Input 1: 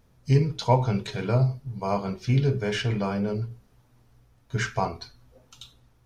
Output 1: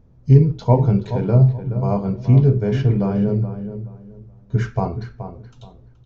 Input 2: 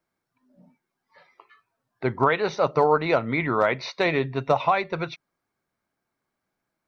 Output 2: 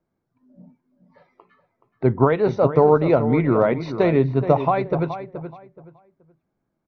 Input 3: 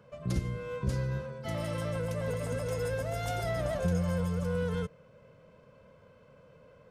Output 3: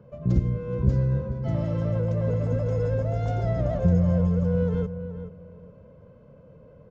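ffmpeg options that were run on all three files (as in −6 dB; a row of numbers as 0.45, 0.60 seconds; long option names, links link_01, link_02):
-filter_complex "[0:a]tiltshelf=frequency=920:gain=10,asplit=2[link_01][link_02];[link_02]adelay=425,lowpass=frequency=2200:poles=1,volume=-10.5dB,asplit=2[link_03][link_04];[link_04]adelay=425,lowpass=frequency=2200:poles=1,volume=0.25,asplit=2[link_05][link_06];[link_06]adelay=425,lowpass=frequency=2200:poles=1,volume=0.25[link_07];[link_01][link_03][link_05][link_07]amix=inputs=4:normalize=0,aresample=16000,aresample=44100"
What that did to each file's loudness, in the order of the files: +8.5, +4.5, +8.0 LU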